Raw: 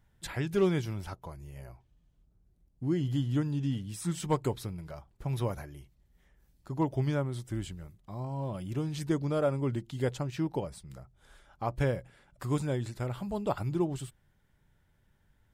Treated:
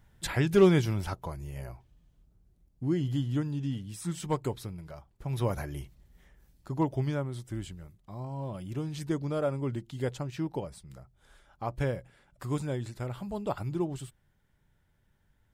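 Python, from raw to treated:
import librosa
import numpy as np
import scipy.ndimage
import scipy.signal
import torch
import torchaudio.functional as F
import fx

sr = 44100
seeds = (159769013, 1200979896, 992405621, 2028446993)

y = fx.gain(x, sr, db=fx.line((1.61, 6.0), (3.57, -1.5), (5.27, -1.5), (5.78, 10.0), (7.15, -1.5)))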